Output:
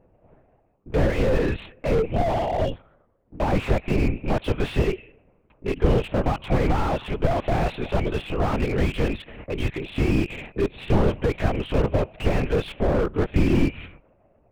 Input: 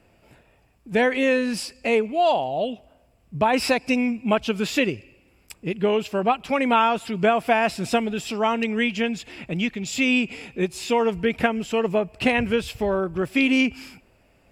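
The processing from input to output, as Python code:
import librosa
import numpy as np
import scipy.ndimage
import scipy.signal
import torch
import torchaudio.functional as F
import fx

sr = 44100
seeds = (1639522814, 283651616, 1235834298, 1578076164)

y = fx.lower_of_two(x, sr, delay_ms=0.54, at=(2.72, 3.36))
y = fx.env_lowpass(y, sr, base_hz=700.0, full_db=-18.5)
y = scipy.signal.sosfilt(scipy.signal.butter(4, 240.0, 'highpass', fs=sr, output='sos'), y)
y = y * np.sin(2.0 * np.pi * 40.0 * np.arange(len(y)) / sr)
y = fx.lpc_vocoder(y, sr, seeds[0], excitation='whisper', order=8)
y = fx.slew_limit(y, sr, full_power_hz=22.0)
y = F.gain(torch.from_numpy(y), 7.5).numpy()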